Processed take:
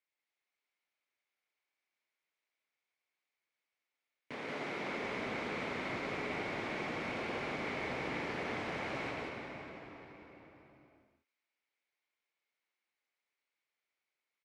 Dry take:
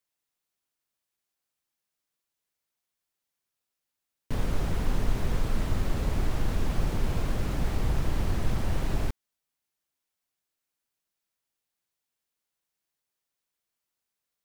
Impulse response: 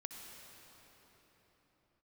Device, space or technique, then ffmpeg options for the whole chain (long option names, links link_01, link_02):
station announcement: -filter_complex "[0:a]asettb=1/sr,asplit=3[link_01][link_02][link_03];[link_01]atrim=end=4.344[link_04];[link_02]atrim=start=4.34:end=4.91,asetpts=PTS-STARTPTS,afade=type=in:duration=0.004:curve=qsin,afade=type=out:start_time=0.566:duration=0.004:curve=qsin,highpass=140[link_05];[link_03]atrim=start=4.906[link_06];[link_04][link_05]acrossfade=duration=0.004:curve1=hsin:curve2=qsin[link_07];[link_07][link_06]acrossfade=duration=0.004:curve1=qsin:curve2=hsin,highpass=330,lowpass=4000,equalizer=frequency=2200:width_type=o:width=0.32:gain=11,aecho=1:1:116.6|180.8:0.316|0.708[link_08];[1:a]atrim=start_sample=2205[link_09];[link_08][link_09]afir=irnorm=-1:irlink=0"